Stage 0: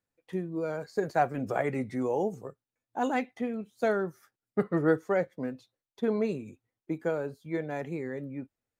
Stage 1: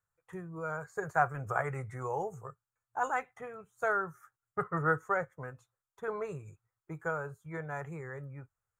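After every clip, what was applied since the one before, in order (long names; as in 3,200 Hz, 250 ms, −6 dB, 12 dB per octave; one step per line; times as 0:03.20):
drawn EQ curve 110 Hz 0 dB, 160 Hz −4 dB, 230 Hz −27 dB, 410 Hz −10 dB, 590 Hz −10 dB, 1,300 Hz +6 dB, 2,000 Hz −7 dB, 4,700 Hz −22 dB, 7,000 Hz −1 dB, 11,000 Hz −6 dB
level +2.5 dB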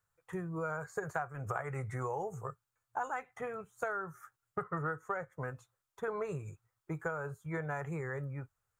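downward compressor 16 to 1, threshold −37 dBFS, peak gain reduction 17 dB
level +4.5 dB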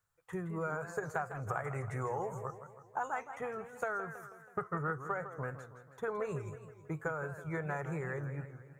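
feedback echo with a swinging delay time 161 ms, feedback 55%, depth 192 cents, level −11 dB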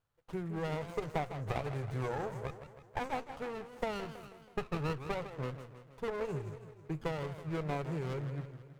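windowed peak hold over 17 samples
level +1 dB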